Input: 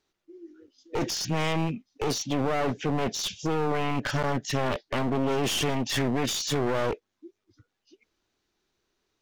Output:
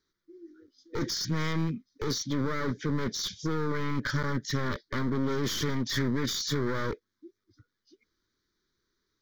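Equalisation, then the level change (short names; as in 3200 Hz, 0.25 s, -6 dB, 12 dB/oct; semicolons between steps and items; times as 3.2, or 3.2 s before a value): fixed phaser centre 2700 Hz, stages 6; 0.0 dB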